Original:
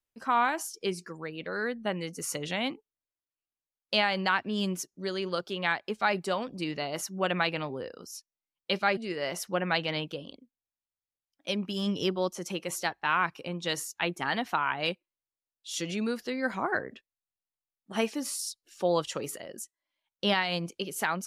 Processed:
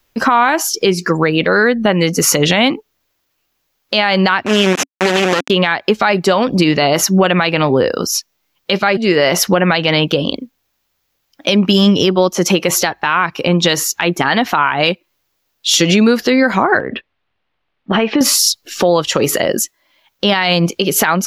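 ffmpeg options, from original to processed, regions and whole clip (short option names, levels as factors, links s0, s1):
-filter_complex "[0:a]asettb=1/sr,asplit=3[s0][s1][s2];[s0]atrim=end=4.464[s3];[s1]atrim=start=4.46:end=5.5,asetpts=PTS-STARTPTS,afade=t=in:d=0.004:c=qsin,afade=t=out:st=1.036:d=0.004:c=qsin,acrusher=bits=3:dc=4:mix=0:aa=0.000001,highpass=220,equalizer=f=270:t=q:w=4:g=6,equalizer=f=1800:t=q:w=4:g=3,equalizer=f=2600:t=q:w=4:g=5,equalizer=f=4500:t=q:w=4:g=-8,lowpass=f=9400:w=0.5412,lowpass=f=9400:w=1.3066[s4];[s2]atrim=start=5.496[s5];[s3][s4]acrossfade=d=0.004:c1=hsin:c2=qsin[s6];[s6][s5]acrossfade=d=0.004:c1=qsin:c2=hsin,asettb=1/sr,asplit=3[s7][s8][s9];[s7]atrim=end=16.804[s10];[s8]atrim=start=16.8:end=18.21,asetpts=PTS-STARTPTS,afade=t=in:d=0.004:c=qsin,afade=t=out:st=1.406:d=0.004:c=qsin,lowpass=f=3300:w=0.5412,lowpass=f=3300:w=1.3066,acompressor=threshold=0.0141:ratio=6:attack=3.2:release=140:knee=1:detection=peak[s11];[s9]atrim=start=18.206[s12];[s10][s11]acrossfade=d=0.004:c1=hsin:c2=qsin[s13];[s13][s12]acrossfade=d=0.004:c1=qsin:c2=hsin,equalizer=f=9000:t=o:w=0.4:g=-13.5,acompressor=threshold=0.0158:ratio=6,alimiter=level_in=29.9:limit=0.891:release=50:level=0:latency=1,volume=0.891"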